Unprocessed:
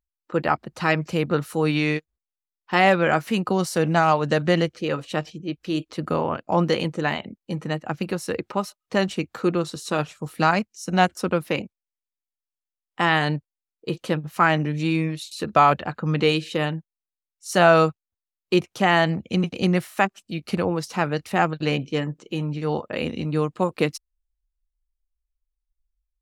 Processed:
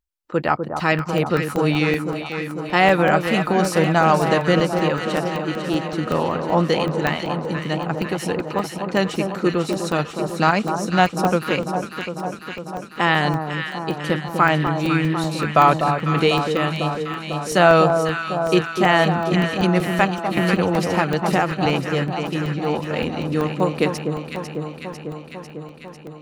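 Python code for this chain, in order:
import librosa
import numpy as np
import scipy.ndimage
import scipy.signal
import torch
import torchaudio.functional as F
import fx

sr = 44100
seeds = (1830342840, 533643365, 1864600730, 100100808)

y = fx.echo_alternate(x, sr, ms=249, hz=1200.0, feedback_pct=83, wet_db=-6)
y = fx.buffer_crackle(y, sr, first_s=0.8, period_s=0.19, block=64, kind='zero')
y = fx.band_squash(y, sr, depth_pct=100, at=(20.37, 21.66))
y = y * librosa.db_to_amplitude(2.0)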